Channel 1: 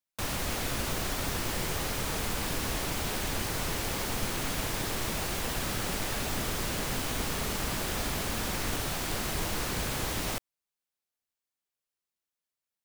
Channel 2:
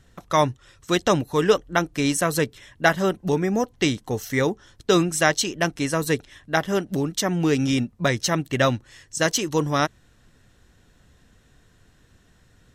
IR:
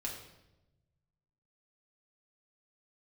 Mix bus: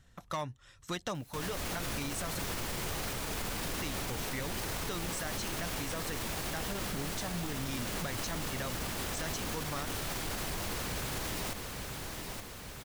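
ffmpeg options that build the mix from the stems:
-filter_complex "[0:a]acompressor=mode=upward:threshold=-39dB:ratio=2.5,adelay=1150,volume=-0.5dB,asplit=2[a][b];[b]volume=-10dB[c];[1:a]equalizer=f=370:w=1.5:g=-7,acompressor=threshold=-26dB:ratio=6,asoftclip=type=hard:threshold=-23dB,volume=-6dB,asplit=3[d][e][f];[d]atrim=end=2.39,asetpts=PTS-STARTPTS,afade=t=out:st=2.386:d=0.004:c=hsin[g];[e]atrim=start=2.39:end=3.79,asetpts=PTS-STARTPTS,volume=0[h];[f]atrim=start=3.79,asetpts=PTS-STARTPTS,afade=t=in:d=0.004:c=hsin[i];[g][h][i]concat=n=3:v=0:a=1,asplit=2[j][k];[k]apad=whole_len=617018[l];[a][l]sidechaincompress=threshold=-37dB:ratio=8:attack=16:release=115[m];[c]aecho=0:1:870|1740|2610|3480|4350|5220|6090|6960|7830:1|0.57|0.325|0.185|0.106|0.0602|0.0343|0.0195|0.0111[n];[m][j][n]amix=inputs=3:normalize=0,alimiter=level_in=3dB:limit=-24dB:level=0:latency=1:release=46,volume=-3dB"

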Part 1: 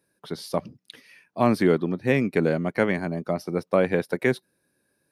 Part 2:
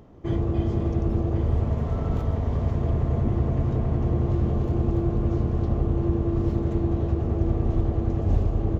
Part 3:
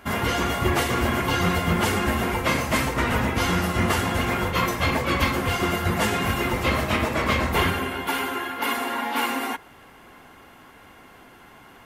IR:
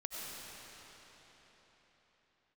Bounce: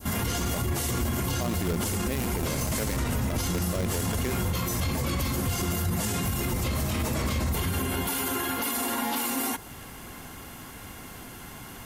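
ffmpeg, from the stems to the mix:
-filter_complex "[0:a]highshelf=f=3.3k:g=6.5,acrusher=bits=4:dc=4:mix=0:aa=0.000001,volume=-4dB[a];[2:a]volume=2dB,bass=f=250:g=10,treble=f=4k:g=14,acompressor=threshold=-19dB:ratio=6,volume=0dB[b];[a][b]amix=inputs=2:normalize=0,adynamicequalizer=threshold=0.0158:dfrequency=2000:dqfactor=0.76:tfrequency=2000:tqfactor=0.76:attack=5:release=100:ratio=0.375:range=2:mode=cutabove:tftype=bell,alimiter=limit=-19.5dB:level=0:latency=1:release=33"

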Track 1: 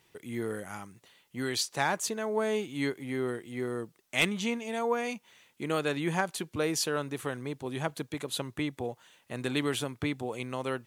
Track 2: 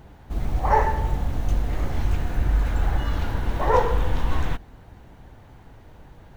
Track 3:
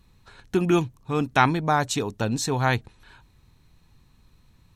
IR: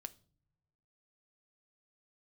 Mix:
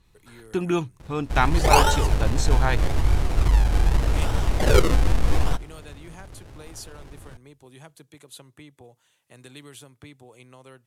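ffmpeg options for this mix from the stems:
-filter_complex "[0:a]highshelf=f=7.7k:g=12,acrossover=split=160|3000[a][b][c];[b]acompressor=threshold=-39dB:ratio=2[d];[a][d][c]amix=inputs=3:normalize=0,adynamicequalizer=threshold=0.00316:dfrequency=2500:dqfactor=0.7:tfrequency=2500:tqfactor=0.7:attack=5:release=100:ratio=0.375:range=3:mode=cutabove:tftype=highshelf,volume=-10.5dB,asplit=2[e][f];[f]volume=-11.5dB[g];[1:a]acrusher=samples=38:mix=1:aa=0.000001:lfo=1:lforange=38:lforate=0.82,adelay=1000,volume=0.5dB,asplit=2[h][i];[i]volume=-5.5dB[j];[2:a]volume=-2.5dB[k];[3:a]atrim=start_sample=2205[l];[g][j]amix=inputs=2:normalize=0[m];[m][l]afir=irnorm=-1:irlink=0[n];[e][h][k][n]amix=inputs=4:normalize=0,lowpass=12k,equalizer=f=220:w=3.4:g=-5"

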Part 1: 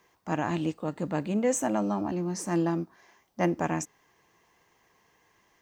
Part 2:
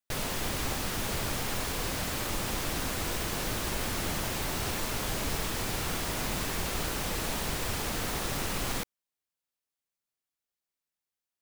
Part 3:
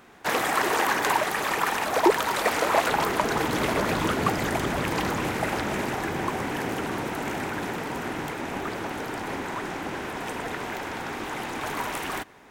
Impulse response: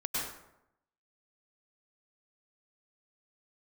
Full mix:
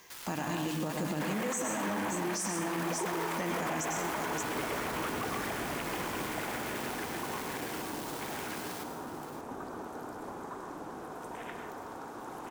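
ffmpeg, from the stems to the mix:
-filter_complex "[0:a]acompressor=threshold=-33dB:ratio=6,highshelf=f=2.7k:g=11.5,volume=1.5dB,asplit=3[a][b][c];[b]volume=-5.5dB[d];[c]volume=-5dB[e];[1:a]highpass=f=890:w=0.5412,highpass=f=890:w=1.3066,acrusher=bits=4:mix=0:aa=0.5,volume=-9.5dB,asplit=3[f][g][h];[g]volume=-8dB[i];[h]volume=-9dB[j];[2:a]afwtdn=0.0251,bass=f=250:g=-4,treble=f=4k:g=15,adelay=950,volume=-14dB,asplit=2[k][l];[l]volume=-3.5dB[m];[3:a]atrim=start_sample=2205[n];[d][i][m]amix=inputs=3:normalize=0[o];[o][n]afir=irnorm=-1:irlink=0[p];[e][j]amix=inputs=2:normalize=0,aecho=0:1:575:1[q];[a][f][k][p][q]amix=inputs=5:normalize=0,alimiter=level_in=1dB:limit=-24dB:level=0:latency=1:release=13,volume=-1dB"

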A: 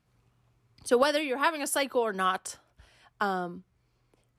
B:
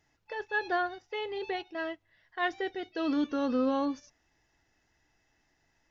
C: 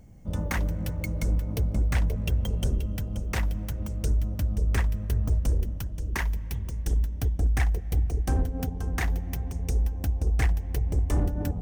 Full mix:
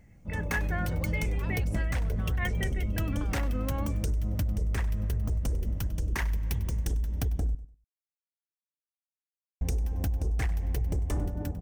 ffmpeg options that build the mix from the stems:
-filter_complex "[0:a]acompressor=threshold=-31dB:ratio=6,lowpass=7.1k,volume=-10dB[a];[1:a]lowpass=f=2.2k:t=q:w=7.8,volume=-6dB[b];[2:a]dynaudnorm=f=110:g=11:m=10dB,alimiter=limit=-12.5dB:level=0:latency=1:release=60,volume=-5.5dB,asplit=3[c][d][e];[c]atrim=end=7.55,asetpts=PTS-STARTPTS,afade=t=out:st=7.546:d=0.004:c=hsin[f];[d]atrim=start=7.55:end=9.61,asetpts=PTS-STARTPTS,volume=0[g];[e]atrim=start=9.61,asetpts=PTS-STARTPTS,afade=t=in:d=0.004:c=hsin[h];[f][g][h]concat=n=3:v=0:a=1,asplit=2[i][j];[j]volume=-17dB,aecho=0:1:98|196|294:1|0.19|0.0361[k];[a][b][i][k]amix=inputs=4:normalize=0,acompressor=threshold=-25dB:ratio=6"

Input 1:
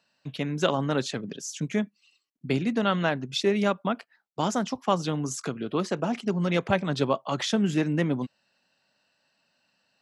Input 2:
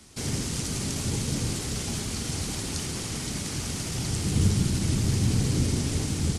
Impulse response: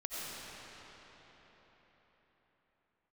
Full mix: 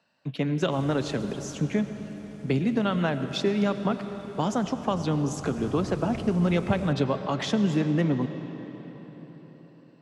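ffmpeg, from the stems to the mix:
-filter_complex "[0:a]acrossover=split=150|3000[a][b][c];[b]acompressor=threshold=-27dB:ratio=6[d];[a][d][c]amix=inputs=3:normalize=0,volume=3dB,asplit=2[e][f];[f]volume=-10dB[g];[1:a]adelay=550,volume=-6.5dB,afade=t=out:st=1.43:d=0.29:silence=0.446684,afade=t=in:st=5.3:d=0.35:silence=0.398107[h];[2:a]atrim=start_sample=2205[i];[g][i]afir=irnorm=-1:irlink=0[j];[e][h][j]amix=inputs=3:normalize=0,highshelf=f=2.6k:g=-11"

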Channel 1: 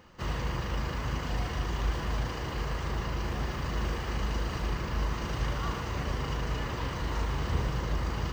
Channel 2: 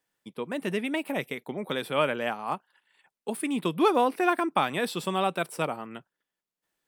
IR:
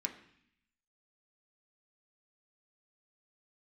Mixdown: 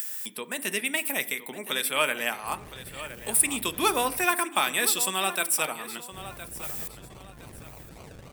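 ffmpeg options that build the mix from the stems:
-filter_complex "[0:a]volume=36dB,asoftclip=hard,volume=-36dB,aexciter=amount=6.5:drive=5.7:freq=2.7k,acrusher=samples=35:mix=1:aa=0.000001:lfo=1:lforange=21:lforate=3.6,adelay=2250,volume=-15dB,asplit=3[a][b][c];[a]atrim=end=4.25,asetpts=PTS-STARTPTS,afade=t=out:st=4.246:d=0.004:c=hsin[d];[b]atrim=start=4.25:end=6.12,asetpts=PTS-STARTPTS,volume=0[e];[c]atrim=start=6.12,asetpts=PTS-STARTPTS,afade=t=in:d=0.004:c=hsin[f];[d][e][f]concat=n=3:v=0:a=1[g];[1:a]acompressor=mode=upward:threshold=-32dB:ratio=2.5,aemphasis=mode=production:type=riaa,volume=-3dB,asplit=3[h][i][j];[i]volume=-5.5dB[k];[j]volume=-12.5dB[l];[2:a]atrim=start_sample=2205[m];[k][m]afir=irnorm=-1:irlink=0[n];[l]aecho=0:1:1015|2030|3045|4060:1|0.29|0.0841|0.0244[o];[g][h][n][o]amix=inputs=4:normalize=0,equalizer=f=125:t=o:w=1:g=7,equalizer=f=2k:t=o:w=1:g=3,equalizer=f=8k:t=o:w=1:g=4"

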